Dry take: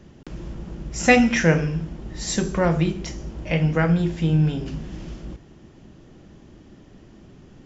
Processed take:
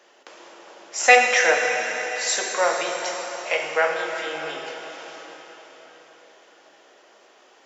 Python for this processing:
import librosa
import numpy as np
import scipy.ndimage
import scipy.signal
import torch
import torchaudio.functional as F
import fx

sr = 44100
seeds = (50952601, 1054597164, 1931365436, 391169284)

y = scipy.signal.sosfilt(scipy.signal.butter(4, 550.0, 'highpass', fs=sr, output='sos'), x)
y = fx.rev_plate(y, sr, seeds[0], rt60_s=4.8, hf_ratio=0.9, predelay_ms=0, drr_db=2.0)
y = F.gain(torch.from_numpy(y), 3.5).numpy()